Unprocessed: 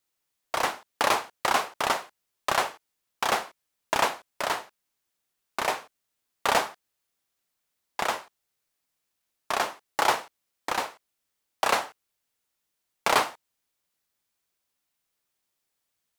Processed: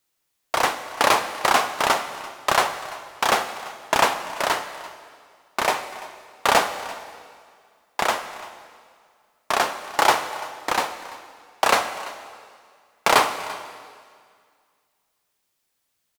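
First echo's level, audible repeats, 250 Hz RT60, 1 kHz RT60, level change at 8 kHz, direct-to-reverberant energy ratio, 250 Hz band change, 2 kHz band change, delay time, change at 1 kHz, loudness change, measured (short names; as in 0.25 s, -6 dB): -19.0 dB, 1, 2.1 s, 2.0 s, +6.0 dB, 9.5 dB, +6.0 dB, +6.0 dB, 0.34 s, +6.0 dB, +5.5 dB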